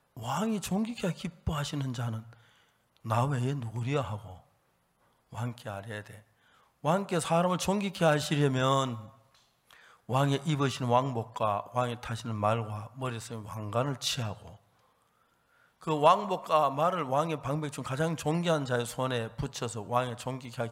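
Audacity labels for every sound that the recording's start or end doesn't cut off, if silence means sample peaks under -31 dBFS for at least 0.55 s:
3.070000	4.160000	sound
5.380000	6.000000	sound
6.850000	8.950000	sound
10.100000	14.320000	sound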